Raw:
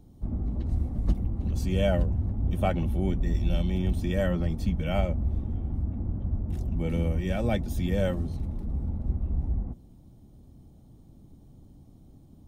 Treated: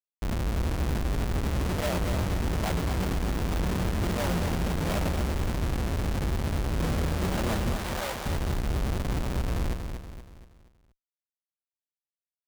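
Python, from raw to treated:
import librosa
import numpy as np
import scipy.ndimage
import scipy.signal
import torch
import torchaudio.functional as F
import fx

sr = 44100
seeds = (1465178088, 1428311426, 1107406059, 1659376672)

y = fx.schmitt(x, sr, flips_db=-36.0)
y = fx.highpass(y, sr, hz=560.0, slope=12, at=(7.76, 8.26))
y = fx.echo_feedback(y, sr, ms=237, feedback_pct=44, wet_db=-6.5)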